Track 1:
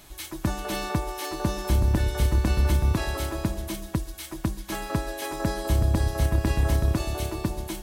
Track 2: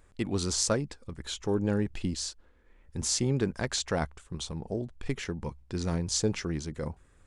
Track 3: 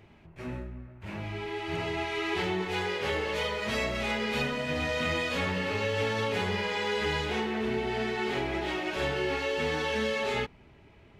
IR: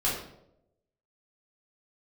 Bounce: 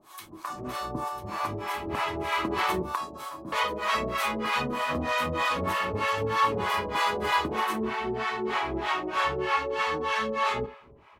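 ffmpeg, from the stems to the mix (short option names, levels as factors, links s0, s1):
-filter_complex "[0:a]highpass=220,volume=0.75,asplit=2[s0][s1];[s1]volume=0.178[s2];[1:a]acompressor=threshold=0.0316:ratio=6,volume=0.126,asplit=2[s3][s4];[2:a]adelay=200,volume=1.33,asplit=3[s5][s6][s7];[s5]atrim=end=2.82,asetpts=PTS-STARTPTS,afade=t=out:st=2.816:d=0.004:c=hsin[s8];[s6]atrim=start=2.82:end=3.52,asetpts=PTS-STARTPTS,volume=0[s9];[s7]atrim=start=3.52,asetpts=PTS-STARTPTS,afade=t=in:d=0.004:c=hsin[s10];[s8][s9][s10]concat=n=3:v=0:a=1,asplit=2[s11][s12];[s12]volume=0.0841[s13];[s4]apad=whole_len=345195[s14];[s0][s14]sidechaincompress=threshold=0.00126:ratio=8:attack=9.9:release=179[s15];[3:a]atrim=start_sample=2205[s16];[s2][s13]amix=inputs=2:normalize=0[s17];[s17][s16]afir=irnorm=-1:irlink=0[s18];[s15][s3][s11][s18]amix=inputs=4:normalize=0,equalizer=f=1100:t=o:w=0.67:g=15,acrossover=split=590[s19][s20];[s19]aeval=exprs='val(0)*(1-1/2+1/2*cos(2*PI*3.2*n/s))':c=same[s21];[s20]aeval=exprs='val(0)*(1-1/2-1/2*cos(2*PI*3.2*n/s))':c=same[s22];[s21][s22]amix=inputs=2:normalize=0,lowshelf=f=110:g=-4"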